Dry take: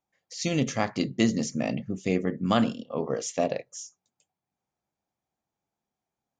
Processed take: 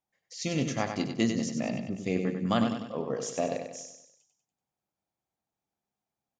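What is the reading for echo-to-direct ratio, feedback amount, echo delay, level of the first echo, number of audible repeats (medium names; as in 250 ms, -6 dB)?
-6.0 dB, 48%, 96 ms, -7.0 dB, 5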